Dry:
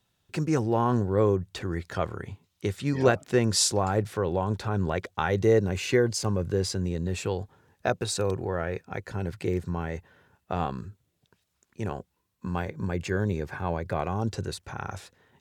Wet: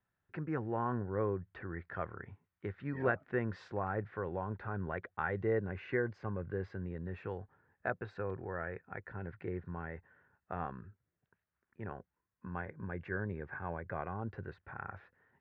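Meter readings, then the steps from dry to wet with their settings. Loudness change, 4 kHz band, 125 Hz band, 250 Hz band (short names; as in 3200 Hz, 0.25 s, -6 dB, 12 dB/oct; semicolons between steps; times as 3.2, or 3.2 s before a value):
-11.5 dB, under -25 dB, -12.0 dB, -12.0 dB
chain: ladder low-pass 2000 Hz, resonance 50%; gain -2.5 dB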